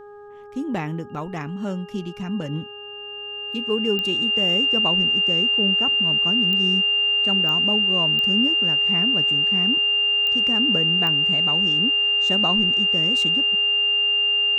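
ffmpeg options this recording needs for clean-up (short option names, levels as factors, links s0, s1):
-af "adeclick=t=4,bandreject=f=411.8:t=h:w=4,bandreject=f=823.6:t=h:w=4,bandreject=f=1235.4:t=h:w=4,bandreject=f=1647.2:t=h:w=4,bandreject=f=2800:w=30"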